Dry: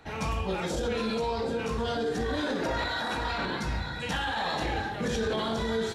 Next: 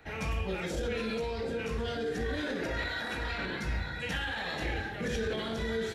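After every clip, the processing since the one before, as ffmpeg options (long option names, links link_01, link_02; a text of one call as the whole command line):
ffmpeg -i in.wav -filter_complex "[0:a]equalizer=frequency=125:width_type=o:width=1:gain=-3,equalizer=frequency=250:width_type=o:width=1:gain=-4,equalizer=frequency=1000:width_type=o:width=1:gain=-7,equalizer=frequency=2000:width_type=o:width=1:gain=4,equalizer=frequency=4000:width_type=o:width=1:gain=-5,equalizer=frequency=8000:width_type=o:width=1:gain=-5,acrossover=split=530|1400[link_01][link_02][link_03];[link_02]alimiter=level_in=14dB:limit=-24dB:level=0:latency=1:release=409,volume=-14dB[link_04];[link_01][link_04][link_03]amix=inputs=3:normalize=0" out.wav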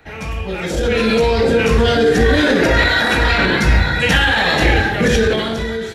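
ffmpeg -i in.wav -af "dynaudnorm=framelen=250:gausssize=7:maxgain=13dB,volume=7.5dB" out.wav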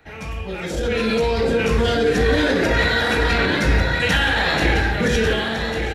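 ffmpeg -i in.wav -af "aecho=1:1:1147:0.447,volume=-5dB" out.wav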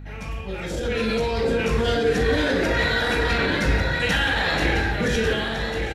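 ffmpeg -i in.wav -filter_complex "[0:a]aeval=exprs='val(0)+0.0224*(sin(2*PI*50*n/s)+sin(2*PI*2*50*n/s)/2+sin(2*PI*3*50*n/s)/3+sin(2*PI*4*50*n/s)/4+sin(2*PI*5*50*n/s)/5)':channel_layout=same,asplit=2[link_01][link_02];[link_02]adelay=42,volume=-11dB[link_03];[link_01][link_03]amix=inputs=2:normalize=0,volume=-3.5dB" out.wav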